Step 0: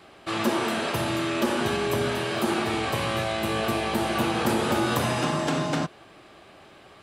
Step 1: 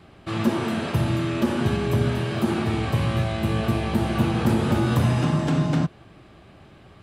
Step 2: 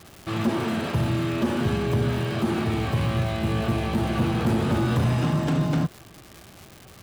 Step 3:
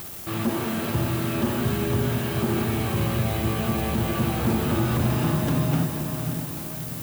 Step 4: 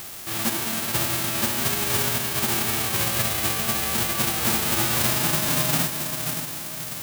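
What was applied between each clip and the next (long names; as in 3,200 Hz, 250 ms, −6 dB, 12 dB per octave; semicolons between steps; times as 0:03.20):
bass and treble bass +15 dB, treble −3 dB; level −3 dB
running median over 3 samples; surface crackle 350 per second −33 dBFS; soft clipping −14.5 dBFS, distortion −18 dB
upward compression, threshold −34 dBFS; background noise violet −37 dBFS; feedback delay with all-pass diffusion 511 ms, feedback 51%, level −6 dB; level −1.5 dB
spectral envelope flattened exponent 0.3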